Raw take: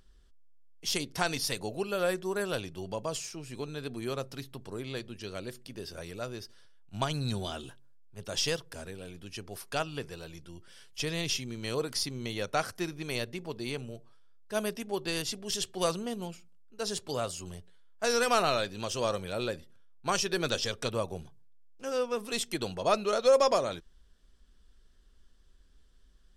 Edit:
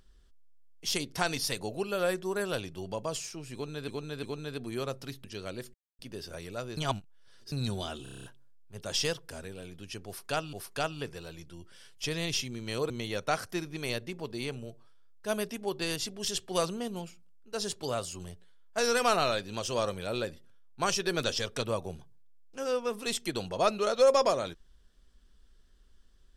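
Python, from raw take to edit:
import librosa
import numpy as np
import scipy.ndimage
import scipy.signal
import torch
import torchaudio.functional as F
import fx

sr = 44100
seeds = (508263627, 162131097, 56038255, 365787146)

y = fx.edit(x, sr, fx.repeat(start_s=3.53, length_s=0.35, count=3),
    fx.cut(start_s=4.54, length_s=0.59),
    fx.insert_silence(at_s=5.63, length_s=0.25),
    fx.reverse_span(start_s=6.41, length_s=0.75),
    fx.stutter(start_s=7.67, slice_s=0.03, count=8),
    fx.repeat(start_s=9.49, length_s=0.47, count=2),
    fx.cut(start_s=11.86, length_s=0.3), tone=tone)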